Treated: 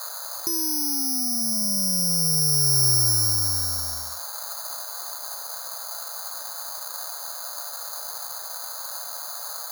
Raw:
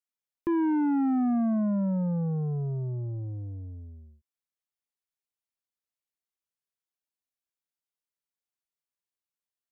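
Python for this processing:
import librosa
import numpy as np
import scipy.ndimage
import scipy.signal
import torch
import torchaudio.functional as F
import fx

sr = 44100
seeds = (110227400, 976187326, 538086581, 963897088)

y = fx.dmg_noise_band(x, sr, seeds[0], low_hz=560.0, high_hz=1500.0, level_db=-47.0)
y = (np.kron(y[::8], np.eye(8)[0]) * 8)[:len(y)]
y = fx.over_compress(y, sr, threshold_db=-22.0, ratio=-1.0)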